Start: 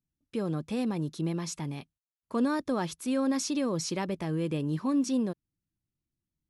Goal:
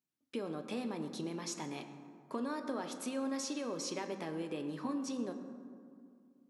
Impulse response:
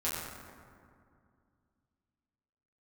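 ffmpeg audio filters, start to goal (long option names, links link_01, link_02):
-filter_complex "[0:a]highpass=300,acompressor=threshold=-37dB:ratio=6,asplit=2[link_01][link_02];[1:a]atrim=start_sample=2205,lowpass=7700[link_03];[link_02][link_03]afir=irnorm=-1:irlink=0,volume=-9dB[link_04];[link_01][link_04]amix=inputs=2:normalize=0,volume=-1.5dB"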